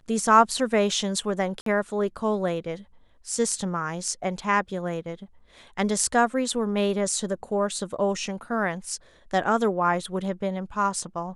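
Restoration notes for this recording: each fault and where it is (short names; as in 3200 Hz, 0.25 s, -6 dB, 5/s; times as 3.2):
1.61–1.66 gap 53 ms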